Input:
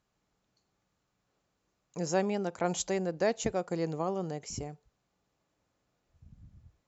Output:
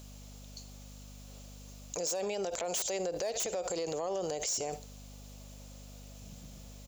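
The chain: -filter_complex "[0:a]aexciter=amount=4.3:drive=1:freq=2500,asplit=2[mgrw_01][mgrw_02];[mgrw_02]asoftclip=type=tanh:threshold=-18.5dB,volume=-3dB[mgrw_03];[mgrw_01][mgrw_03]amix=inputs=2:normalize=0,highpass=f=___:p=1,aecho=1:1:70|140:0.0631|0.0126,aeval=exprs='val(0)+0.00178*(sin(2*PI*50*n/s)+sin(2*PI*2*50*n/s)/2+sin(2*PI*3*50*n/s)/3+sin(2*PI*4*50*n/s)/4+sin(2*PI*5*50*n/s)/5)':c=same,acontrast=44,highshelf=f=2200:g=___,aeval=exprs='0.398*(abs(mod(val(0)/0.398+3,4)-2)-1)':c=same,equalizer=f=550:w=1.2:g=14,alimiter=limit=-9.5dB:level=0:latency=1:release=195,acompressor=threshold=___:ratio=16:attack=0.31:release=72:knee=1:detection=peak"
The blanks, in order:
430, 8.5, -29dB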